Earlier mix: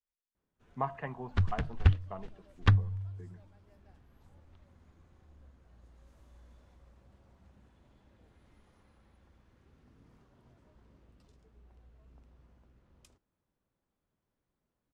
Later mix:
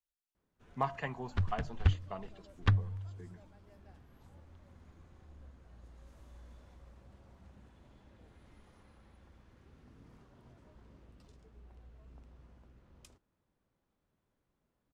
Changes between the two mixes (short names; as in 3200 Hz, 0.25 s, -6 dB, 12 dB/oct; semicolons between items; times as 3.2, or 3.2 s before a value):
speech: remove LPF 1800 Hz 12 dB/oct; first sound +3.5 dB; second sound -4.0 dB